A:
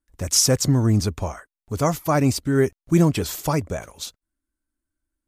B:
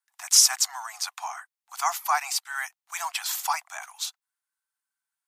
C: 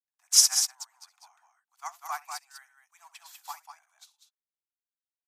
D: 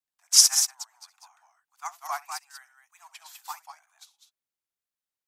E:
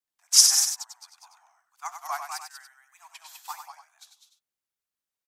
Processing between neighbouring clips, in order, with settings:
Butterworth high-pass 740 Hz 96 dB per octave; level +1.5 dB
loudspeakers that aren't time-aligned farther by 23 metres −10 dB, 67 metres −3 dB; expander for the loud parts 2.5 to 1, over −33 dBFS
tape wow and flutter 65 cents; level +2.5 dB
single-tap delay 96 ms −7.5 dB

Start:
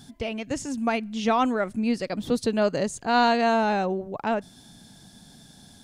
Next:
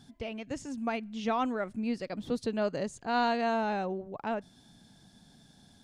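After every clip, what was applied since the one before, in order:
high-shelf EQ 8,000 Hz −10 dB
level −7.5 dB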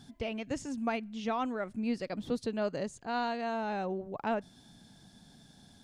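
speech leveller within 4 dB 0.5 s
level −2 dB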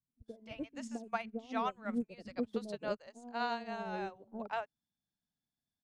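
three-band delay without the direct sound lows, mids, highs 80/260 ms, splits 180/560 Hz
expander for the loud parts 2.5 to 1, over −56 dBFS
level +1.5 dB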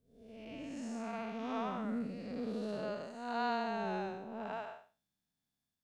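spectrum smeared in time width 266 ms
level +5 dB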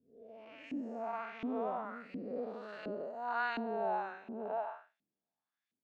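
auto-filter band-pass saw up 1.4 Hz 260–2,400 Hz
level +8 dB

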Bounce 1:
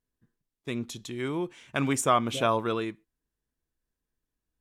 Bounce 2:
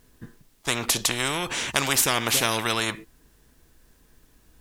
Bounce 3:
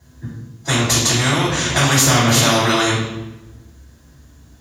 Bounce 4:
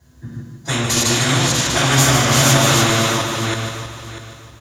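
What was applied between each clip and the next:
every bin compressed towards the loudest bin 4 to 1; level +5.5 dB
convolution reverb RT60 1.1 s, pre-delay 3 ms, DRR −9 dB; level −7.5 dB
feedback delay that plays each chunk backwards 322 ms, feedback 48%, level −1 dB; on a send: repeating echo 150 ms, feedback 45%, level −7 dB; on the sum: level −3 dB

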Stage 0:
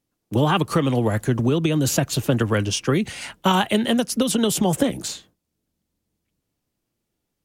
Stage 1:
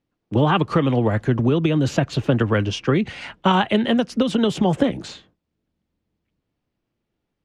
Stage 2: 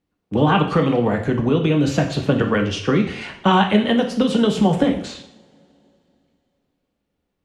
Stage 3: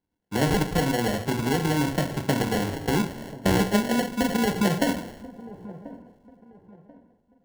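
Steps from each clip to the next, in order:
low-pass filter 3,200 Hz 12 dB per octave; level +1.5 dB
coupled-rooms reverb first 0.57 s, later 3.1 s, from −26 dB, DRR 2.5 dB
decimation without filtering 36×; delay with a low-pass on its return 1,037 ms, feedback 30%, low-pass 850 Hz, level −16.5 dB; level −6.5 dB

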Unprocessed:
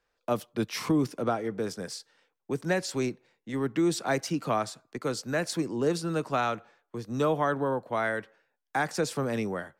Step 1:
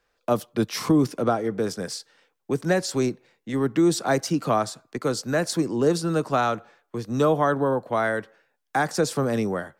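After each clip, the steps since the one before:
notch filter 920 Hz, Q 26
dynamic equaliser 2,400 Hz, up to −6 dB, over −47 dBFS, Q 1.5
level +6 dB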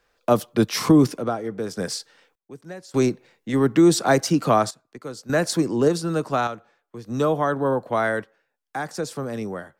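sample-and-hold tremolo 1.7 Hz, depth 90%
level +4.5 dB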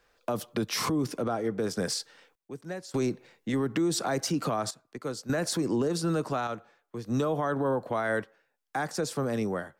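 downward compressor, threshold −20 dBFS, peak gain reduction 10 dB
brickwall limiter −20 dBFS, peak gain reduction 10.5 dB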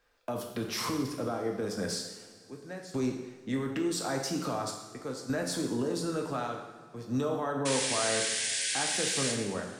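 sound drawn into the spectrogram noise, 0:07.65–0:09.32, 1,500–10,000 Hz −29 dBFS
convolution reverb, pre-delay 3 ms, DRR 1 dB
level −5.5 dB

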